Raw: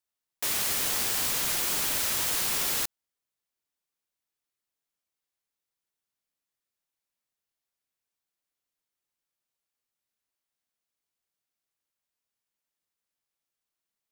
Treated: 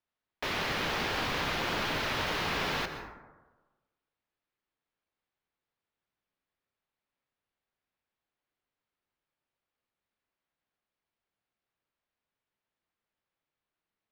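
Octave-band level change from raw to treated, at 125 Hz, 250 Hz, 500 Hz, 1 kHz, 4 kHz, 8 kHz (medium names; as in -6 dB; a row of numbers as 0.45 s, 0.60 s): +6.5 dB, +5.5 dB, +5.5 dB, +5.0 dB, -2.5 dB, -18.5 dB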